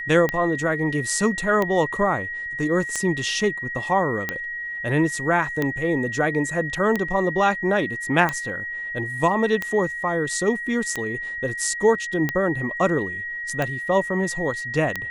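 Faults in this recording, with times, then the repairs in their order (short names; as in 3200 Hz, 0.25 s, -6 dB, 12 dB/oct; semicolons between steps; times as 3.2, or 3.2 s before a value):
tick 45 rpm -10 dBFS
tone 1900 Hz -28 dBFS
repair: de-click; notch 1900 Hz, Q 30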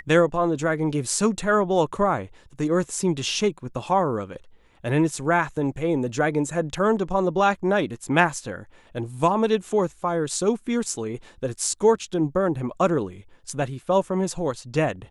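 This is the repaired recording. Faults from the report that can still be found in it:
none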